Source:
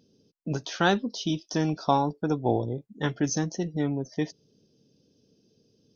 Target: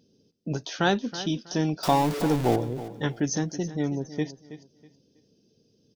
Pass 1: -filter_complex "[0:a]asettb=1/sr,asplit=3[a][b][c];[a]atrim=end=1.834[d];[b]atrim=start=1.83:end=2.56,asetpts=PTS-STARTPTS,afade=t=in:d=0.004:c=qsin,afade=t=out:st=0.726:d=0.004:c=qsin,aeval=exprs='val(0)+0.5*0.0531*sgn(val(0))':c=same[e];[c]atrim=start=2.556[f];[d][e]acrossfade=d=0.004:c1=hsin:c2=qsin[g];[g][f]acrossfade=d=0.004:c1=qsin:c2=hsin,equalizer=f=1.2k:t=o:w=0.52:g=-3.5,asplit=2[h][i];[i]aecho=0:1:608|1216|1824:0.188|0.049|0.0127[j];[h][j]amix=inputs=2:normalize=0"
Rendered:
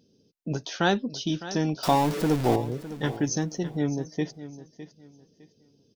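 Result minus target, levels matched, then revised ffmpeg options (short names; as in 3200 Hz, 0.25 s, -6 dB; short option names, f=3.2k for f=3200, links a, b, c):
echo 0.285 s late
-filter_complex "[0:a]asettb=1/sr,asplit=3[a][b][c];[a]atrim=end=1.834[d];[b]atrim=start=1.83:end=2.56,asetpts=PTS-STARTPTS,afade=t=in:d=0.004:c=qsin,afade=t=out:st=0.726:d=0.004:c=qsin,aeval=exprs='val(0)+0.5*0.0531*sgn(val(0))':c=same[e];[c]atrim=start=2.556[f];[d][e]acrossfade=d=0.004:c1=hsin:c2=qsin[g];[g][f]acrossfade=d=0.004:c1=qsin:c2=hsin,equalizer=f=1.2k:t=o:w=0.52:g=-3.5,asplit=2[h][i];[i]aecho=0:1:323|646|969:0.188|0.049|0.0127[j];[h][j]amix=inputs=2:normalize=0"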